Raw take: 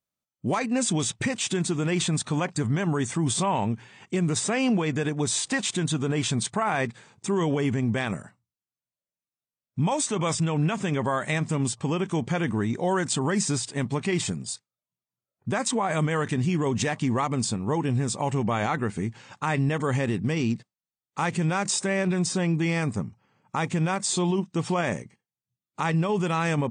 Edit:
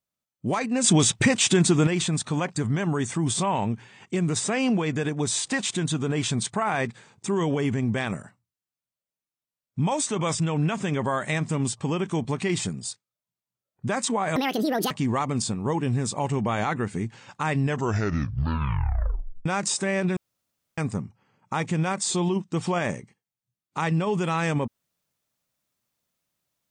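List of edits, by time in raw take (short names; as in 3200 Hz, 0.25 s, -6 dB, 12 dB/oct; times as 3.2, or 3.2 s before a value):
0.84–1.87 gain +7 dB
12.25–13.88 cut
15.99–16.93 speed 172%
19.64 tape stop 1.84 s
22.19–22.8 room tone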